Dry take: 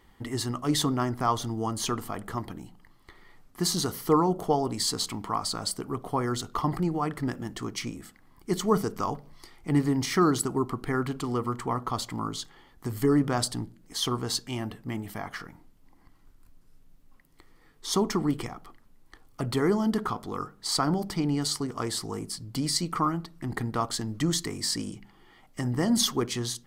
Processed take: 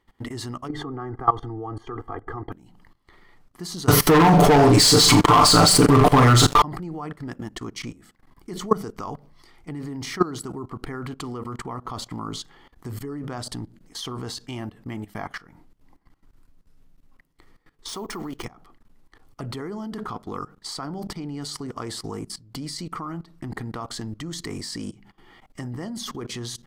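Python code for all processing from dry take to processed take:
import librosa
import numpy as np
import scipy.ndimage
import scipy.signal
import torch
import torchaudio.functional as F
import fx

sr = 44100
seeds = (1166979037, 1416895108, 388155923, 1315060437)

y = fx.chain(x, sr, fx.savgol(points=41),
    fx.comb(ms=2.5, depth=1.0), at=(0.68, 2.52))
y = fx.chain(y, sr, fx.comb(ms=6.8, depth=0.96),
    fx.room_flutter(wall_m=7.2, rt60_s=0.31),
    fx.leveller(passes=5), at=(3.88, 6.62))
y = fx.chain(y, sr, fx.peak_eq(hz=120.0, db=-10.0, octaves=2.8),
    fx.resample_bad(factor=3, down='none', up='hold'), at=(17.88, 18.45))
y = fx.level_steps(y, sr, step_db=19)
y = fx.high_shelf(y, sr, hz=7600.0, db=-6.5)
y = y * 10.0 ** (6.0 / 20.0)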